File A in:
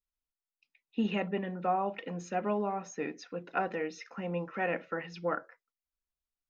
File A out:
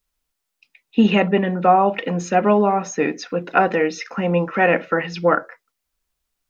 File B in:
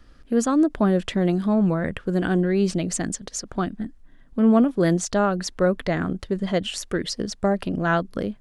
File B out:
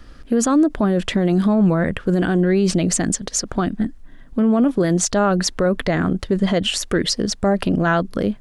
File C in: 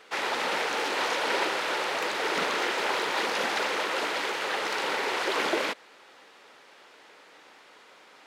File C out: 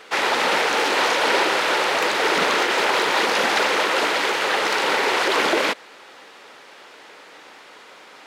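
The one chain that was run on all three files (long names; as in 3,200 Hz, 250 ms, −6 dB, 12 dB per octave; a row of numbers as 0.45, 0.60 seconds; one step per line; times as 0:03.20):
brickwall limiter −18 dBFS
loudness normalisation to −19 LKFS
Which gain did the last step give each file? +16.0, +9.0, +9.0 decibels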